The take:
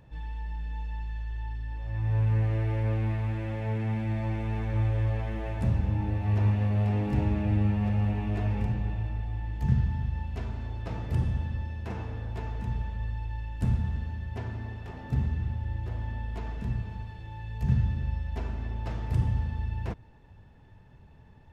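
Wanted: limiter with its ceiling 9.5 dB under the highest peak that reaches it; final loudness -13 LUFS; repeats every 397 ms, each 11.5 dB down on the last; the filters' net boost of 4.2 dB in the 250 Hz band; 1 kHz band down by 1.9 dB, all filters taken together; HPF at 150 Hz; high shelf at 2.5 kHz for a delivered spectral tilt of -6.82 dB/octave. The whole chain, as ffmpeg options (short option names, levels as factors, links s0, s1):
-af "highpass=150,equalizer=f=250:t=o:g=7,equalizer=f=1000:t=o:g=-4,highshelf=f=2500:g=8,alimiter=limit=0.0631:level=0:latency=1,aecho=1:1:397|794|1191:0.266|0.0718|0.0194,volume=11.9"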